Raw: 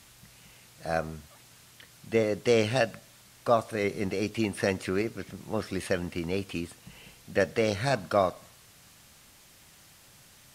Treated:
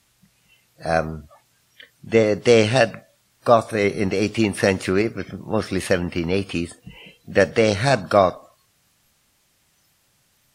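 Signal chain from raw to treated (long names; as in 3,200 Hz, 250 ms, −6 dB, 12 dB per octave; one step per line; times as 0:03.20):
noise reduction from a noise print of the clip's start 17 dB
level +9 dB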